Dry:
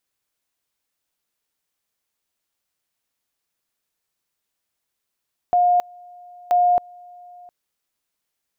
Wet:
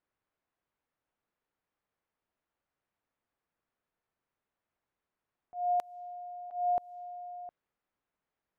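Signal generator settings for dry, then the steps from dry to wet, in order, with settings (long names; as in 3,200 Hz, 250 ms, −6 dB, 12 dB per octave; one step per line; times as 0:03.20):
tone at two levels in turn 712 Hz −13 dBFS, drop 27 dB, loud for 0.27 s, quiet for 0.71 s, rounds 2
low-pass that shuts in the quiet parts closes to 1,600 Hz, open at −19.5 dBFS
downward compressor 4 to 1, threshold −29 dBFS
volume swells 188 ms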